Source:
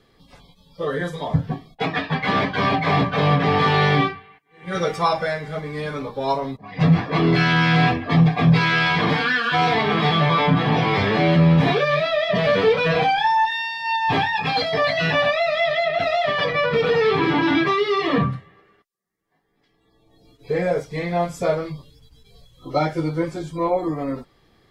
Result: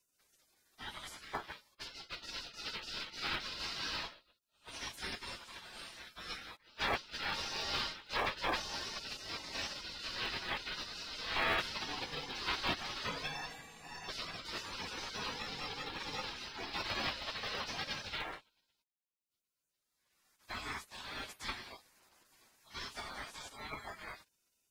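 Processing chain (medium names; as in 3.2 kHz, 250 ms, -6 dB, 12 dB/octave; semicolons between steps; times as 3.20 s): spectral gate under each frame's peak -30 dB weak; peaking EQ 1 kHz +5 dB 2.4 oct; in parallel at -12 dB: sample-and-hold 41×; on the sum: trim -1.5 dB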